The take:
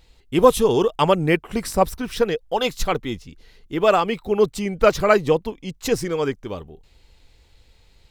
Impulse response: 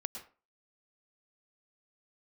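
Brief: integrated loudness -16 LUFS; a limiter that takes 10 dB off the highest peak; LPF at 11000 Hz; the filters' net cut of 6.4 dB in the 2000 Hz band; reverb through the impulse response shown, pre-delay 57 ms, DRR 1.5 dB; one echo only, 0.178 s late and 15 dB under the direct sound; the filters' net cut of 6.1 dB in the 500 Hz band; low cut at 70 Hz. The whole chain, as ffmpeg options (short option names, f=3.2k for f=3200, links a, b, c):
-filter_complex "[0:a]highpass=70,lowpass=11k,equalizer=f=500:t=o:g=-7,equalizer=f=2k:t=o:g=-8.5,alimiter=limit=-15.5dB:level=0:latency=1,aecho=1:1:178:0.178,asplit=2[a][b];[1:a]atrim=start_sample=2205,adelay=57[c];[b][c]afir=irnorm=-1:irlink=0,volume=-1dB[d];[a][d]amix=inputs=2:normalize=0,volume=9.5dB"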